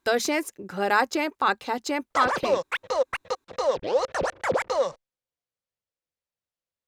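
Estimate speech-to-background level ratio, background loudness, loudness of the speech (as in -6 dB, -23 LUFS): 1.0 dB, -27.0 LUFS, -26.0 LUFS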